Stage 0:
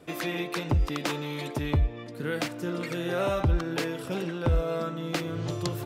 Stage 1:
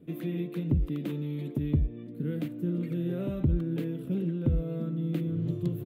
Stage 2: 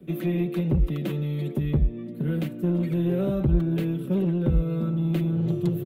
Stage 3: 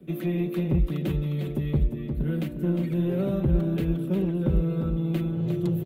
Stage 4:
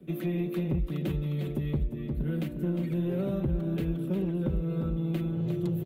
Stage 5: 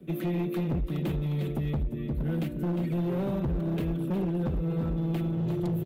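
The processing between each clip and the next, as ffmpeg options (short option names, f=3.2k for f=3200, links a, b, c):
-af "firequalizer=gain_entry='entry(110,0);entry(160,10);entry(790,-18);entry(1400,-16);entry(2100,-13);entry(3500,-12);entry(5100,-25);entry(14000,-3)':delay=0.05:min_phase=1,volume=-3.5dB"
-filter_complex "[0:a]aecho=1:1:5.3:0.63,acrossover=split=130|290|1900[a][b][c][d];[b]asoftclip=type=tanh:threshold=-34dB[e];[a][e][c][d]amix=inputs=4:normalize=0,volume=6dB"
-af "aecho=1:1:356|712|1068:0.422|0.0759|0.0137,volume=-1.5dB"
-af "acompressor=threshold=-24dB:ratio=3,volume=-2dB"
-af "volume=27dB,asoftclip=hard,volume=-27dB,volume=2dB"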